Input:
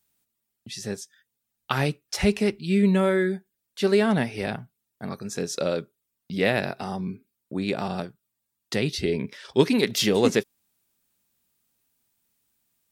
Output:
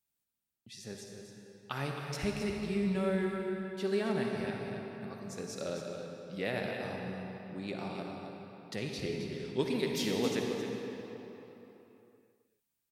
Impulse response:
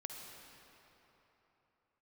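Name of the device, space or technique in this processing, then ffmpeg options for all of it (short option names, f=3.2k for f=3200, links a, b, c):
cave: -filter_complex "[0:a]aecho=1:1:267:0.376[a];[1:a]atrim=start_sample=2205[b];[a][b]afir=irnorm=-1:irlink=0,volume=-8.5dB"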